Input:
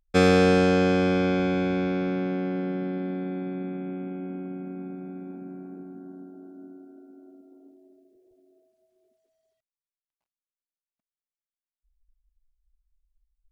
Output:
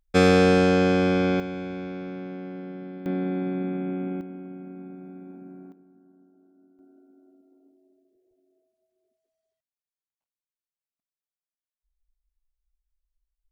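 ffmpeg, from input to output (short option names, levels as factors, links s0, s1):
-af "asetnsamples=n=441:p=0,asendcmd='1.4 volume volume -8dB;3.06 volume volume 4dB;4.21 volume volume -4dB;5.72 volume volume -15dB;6.79 volume volume -7.5dB',volume=1.12"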